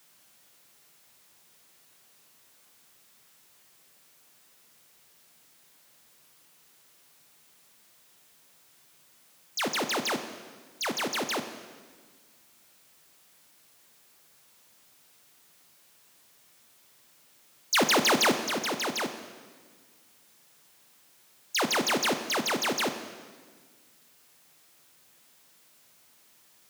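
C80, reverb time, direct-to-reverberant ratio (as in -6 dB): 11.0 dB, 1.6 s, 8.0 dB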